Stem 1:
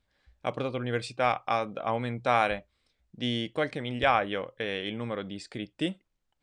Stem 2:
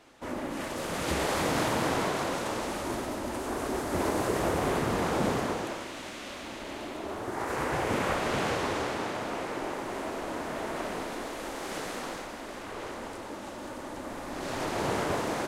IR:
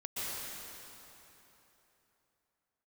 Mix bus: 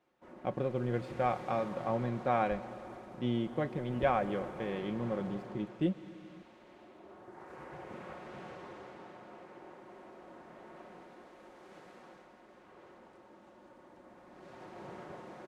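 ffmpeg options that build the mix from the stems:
-filter_complex "[0:a]tiltshelf=f=710:g=5.5,aeval=exprs='sgn(val(0))*max(abs(val(0))-0.00422,0)':c=same,volume=0.562,asplit=2[s0][s1];[s1]volume=0.133[s2];[1:a]highpass=62,volume=0.133[s3];[2:a]atrim=start_sample=2205[s4];[s2][s4]afir=irnorm=-1:irlink=0[s5];[s0][s3][s5]amix=inputs=3:normalize=0,lowpass=f=1700:p=1,aecho=1:1:5.5:0.48"

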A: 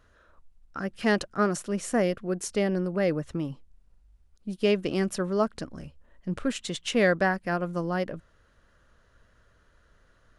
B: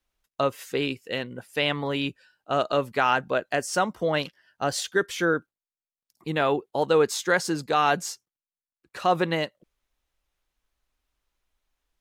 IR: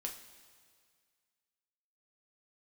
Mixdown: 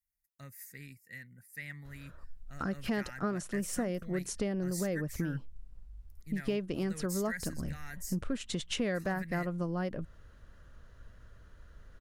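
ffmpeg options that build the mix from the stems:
-filter_complex "[0:a]lowshelf=f=190:g=10.5,acompressor=threshold=0.0251:ratio=4,adelay=1850,volume=1[s0];[1:a]firequalizer=gain_entry='entry(160,0);entry(370,-22);entry(1100,-23);entry(1900,4);entry(3000,-24);entry(4800,-3);entry(12000,12)':delay=0.05:min_phase=1,volume=0.251[s1];[s0][s1]amix=inputs=2:normalize=0"

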